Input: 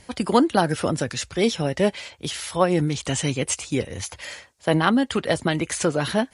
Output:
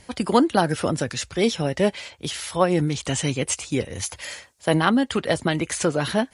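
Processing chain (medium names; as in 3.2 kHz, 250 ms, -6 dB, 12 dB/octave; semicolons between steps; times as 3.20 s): 3.95–4.84 s: treble shelf 6.6 kHz +7 dB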